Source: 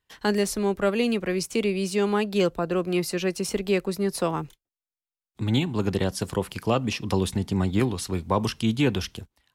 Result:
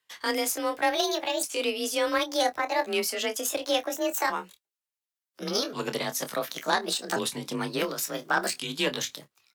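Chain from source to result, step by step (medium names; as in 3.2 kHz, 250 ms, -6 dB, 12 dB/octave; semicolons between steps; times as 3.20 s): sawtooth pitch modulation +8 st, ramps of 1432 ms; high-pass 960 Hz 6 dB/octave; in parallel at -2 dB: peak limiter -24.5 dBFS, peak gain reduction 10.5 dB; on the sum: doubling 27 ms -10.5 dB; Chebyshev shaper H 3 -16 dB, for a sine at -10.5 dBFS; frequency shift +31 Hz; trim +4.5 dB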